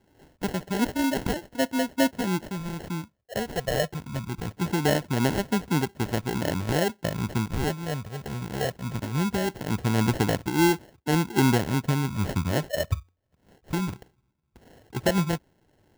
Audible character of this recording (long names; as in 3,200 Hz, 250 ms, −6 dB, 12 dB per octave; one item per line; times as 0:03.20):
phaser sweep stages 12, 0.21 Hz, lowest notch 280–5,000 Hz
aliases and images of a low sample rate 1,200 Hz, jitter 0%
amplitude modulation by smooth noise